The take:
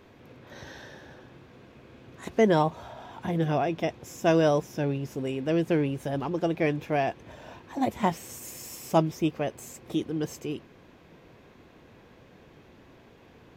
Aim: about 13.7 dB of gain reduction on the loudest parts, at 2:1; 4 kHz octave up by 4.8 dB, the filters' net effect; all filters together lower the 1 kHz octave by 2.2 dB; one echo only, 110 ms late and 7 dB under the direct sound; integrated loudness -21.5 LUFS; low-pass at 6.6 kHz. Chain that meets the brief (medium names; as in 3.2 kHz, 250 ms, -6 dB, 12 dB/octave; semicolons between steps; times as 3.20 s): low-pass 6.6 kHz; peaking EQ 1 kHz -3.5 dB; peaking EQ 4 kHz +7.5 dB; compression 2:1, threshold -44 dBFS; delay 110 ms -7 dB; trim +18.5 dB